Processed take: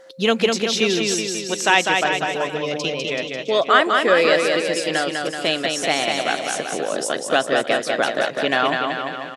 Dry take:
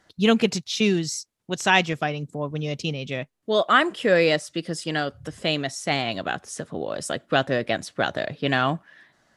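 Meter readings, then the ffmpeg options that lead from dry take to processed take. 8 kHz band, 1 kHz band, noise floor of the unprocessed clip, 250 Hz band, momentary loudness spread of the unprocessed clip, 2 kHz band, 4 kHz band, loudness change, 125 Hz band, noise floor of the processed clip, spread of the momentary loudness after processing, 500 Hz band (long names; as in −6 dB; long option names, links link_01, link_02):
+7.5 dB, +5.0 dB, −70 dBFS, 0.0 dB, 12 LU, +5.0 dB, +6.0 dB, +4.5 dB, −6.0 dB, −33 dBFS, 8 LU, +5.0 dB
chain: -filter_complex "[0:a]highpass=320,asplit=2[link_01][link_02];[link_02]acompressor=threshold=-33dB:ratio=6,volume=2.5dB[link_03];[link_01][link_03]amix=inputs=2:normalize=0,aeval=exprs='val(0)+0.00562*sin(2*PI*530*n/s)':channel_layout=same,aecho=1:1:200|380|542|687.8|819:0.631|0.398|0.251|0.158|0.1,volume=1dB"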